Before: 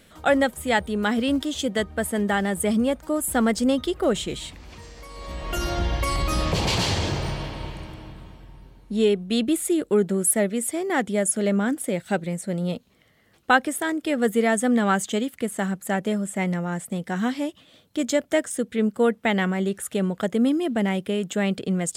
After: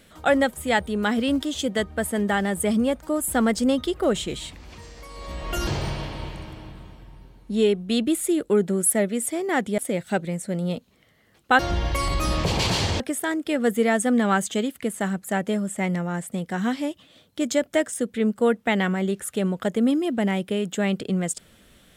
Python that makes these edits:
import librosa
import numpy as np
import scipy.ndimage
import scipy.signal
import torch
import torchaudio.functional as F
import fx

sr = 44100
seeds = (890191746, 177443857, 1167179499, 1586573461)

y = fx.edit(x, sr, fx.move(start_s=5.67, length_s=1.41, to_s=13.58),
    fx.cut(start_s=11.19, length_s=0.58), tone=tone)